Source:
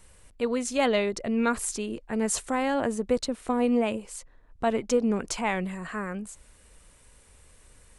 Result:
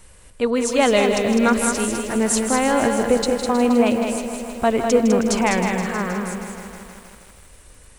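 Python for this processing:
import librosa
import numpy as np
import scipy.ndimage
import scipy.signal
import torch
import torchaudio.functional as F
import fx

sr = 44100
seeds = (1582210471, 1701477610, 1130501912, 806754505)

y = x + 10.0 ** (-6.0 / 20.0) * np.pad(x, (int(203 * sr / 1000.0), 0))[:len(x)]
y = fx.echo_crushed(y, sr, ms=158, feedback_pct=80, bits=8, wet_db=-10)
y = y * librosa.db_to_amplitude(7.0)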